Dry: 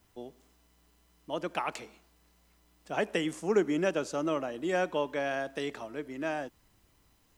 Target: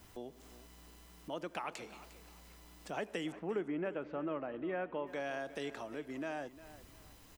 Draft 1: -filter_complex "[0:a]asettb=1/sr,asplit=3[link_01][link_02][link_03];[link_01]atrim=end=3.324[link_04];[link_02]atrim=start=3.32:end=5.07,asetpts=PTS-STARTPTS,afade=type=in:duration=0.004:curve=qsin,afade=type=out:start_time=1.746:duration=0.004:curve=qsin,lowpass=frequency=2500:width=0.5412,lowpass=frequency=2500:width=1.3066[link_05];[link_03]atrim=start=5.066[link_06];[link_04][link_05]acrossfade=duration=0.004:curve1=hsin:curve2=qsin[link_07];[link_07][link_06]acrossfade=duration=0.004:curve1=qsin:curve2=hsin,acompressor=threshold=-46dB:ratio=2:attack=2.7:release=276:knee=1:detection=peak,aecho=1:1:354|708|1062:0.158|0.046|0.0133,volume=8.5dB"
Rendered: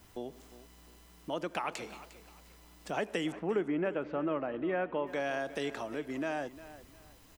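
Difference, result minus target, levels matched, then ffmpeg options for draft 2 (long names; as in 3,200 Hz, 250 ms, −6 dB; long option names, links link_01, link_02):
downward compressor: peak gain reduction −5.5 dB
-filter_complex "[0:a]asettb=1/sr,asplit=3[link_01][link_02][link_03];[link_01]atrim=end=3.324[link_04];[link_02]atrim=start=3.32:end=5.07,asetpts=PTS-STARTPTS,afade=type=in:duration=0.004:curve=qsin,afade=type=out:start_time=1.746:duration=0.004:curve=qsin,lowpass=frequency=2500:width=0.5412,lowpass=frequency=2500:width=1.3066[link_05];[link_03]atrim=start=5.066[link_06];[link_04][link_05]acrossfade=duration=0.004:curve1=hsin:curve2=qsin[link_07];[link_07][link_06]acrossfade=duration=0.004:curve1=qsin:curve2=hsin,acompressor=threshold=-57dB:ratio=2:attack=2.7:release=276:knee=1:detection=peak,aecho=1:1:354|708|1062:0.158|0.046|0.0133,volume=8.5dB"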